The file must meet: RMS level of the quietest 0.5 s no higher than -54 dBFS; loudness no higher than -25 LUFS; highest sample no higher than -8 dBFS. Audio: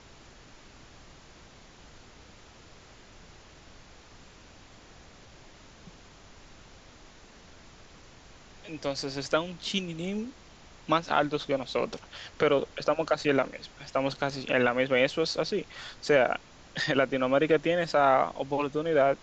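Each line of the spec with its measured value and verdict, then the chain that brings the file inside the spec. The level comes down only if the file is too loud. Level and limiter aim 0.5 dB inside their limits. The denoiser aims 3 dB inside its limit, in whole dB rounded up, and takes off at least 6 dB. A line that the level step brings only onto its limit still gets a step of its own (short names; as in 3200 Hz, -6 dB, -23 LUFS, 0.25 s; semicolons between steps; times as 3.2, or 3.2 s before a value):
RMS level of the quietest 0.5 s -52 dBFS: fail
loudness -28.0 LUFS: OK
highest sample -8.5 dBFS: OK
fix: denoiser 6 dB, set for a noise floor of -52 dBFS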